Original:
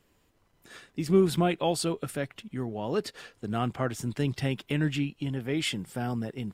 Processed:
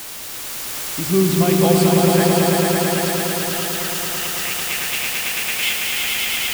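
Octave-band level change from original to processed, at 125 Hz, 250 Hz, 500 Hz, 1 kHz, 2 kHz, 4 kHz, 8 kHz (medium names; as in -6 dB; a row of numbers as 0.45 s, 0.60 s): +8.5 dB, +9.0 dB, +10.5 dB, +11.5 dB, +16.0 dB, +15.5 dB, +20.0 dB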